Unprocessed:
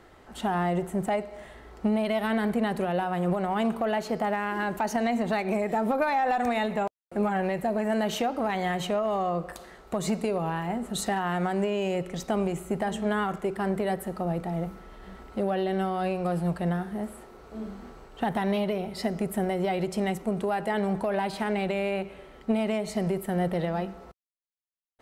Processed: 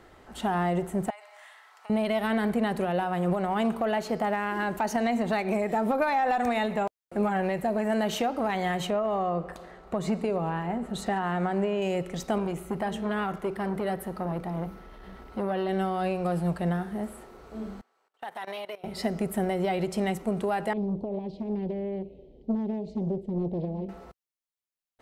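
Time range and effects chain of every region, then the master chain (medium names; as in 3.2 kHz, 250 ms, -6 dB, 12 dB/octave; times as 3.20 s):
1.10–1.90 s: high-pass 890 Hz 24 dB/octave + compression 10:1, threshold -42 dBFS
8.90–11.82 s: treble shelf 4.3 kHz -12 dB + modulated delay 138 ms, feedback 73%, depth 80 cents, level -23 dB
12.38–15.69 s: peaking EQ 7.6 kHz -7 dB 0.39 oct + transformer saturation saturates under 550 Hz
17.81–18.84 s: high-pass 690 Hz + gate -46 dBFS, range -16 dB + level held to a coarse grid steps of 18 dB
20.73–23.89 s: Chebyshev band-stop 460–4100 Hz + tape spacing loss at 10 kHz 38 dB + loudspeaker Doppler distortion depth 0.64 ms
whole clip: none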